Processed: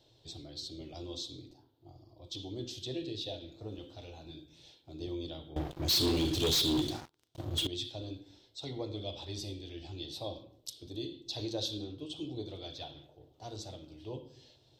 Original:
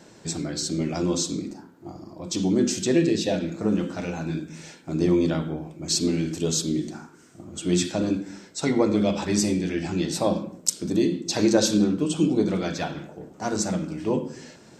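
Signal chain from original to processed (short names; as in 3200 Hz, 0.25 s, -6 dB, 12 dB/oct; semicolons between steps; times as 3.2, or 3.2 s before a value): EQ curve 130 Hz 0 dB, 180 Hz -28 dB, 300 Hz -11 dB, 500 Hz -10 dB, 730 Hz -8 dB, 1500 Hz -21 dB, 2300 Hz -15 dB, 3500 Hz +5 dB, 7500 Hz -19 dB, 13000 Hz -4 dB; 5.56–7.67 sample leveller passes 5; gain -7.5 dB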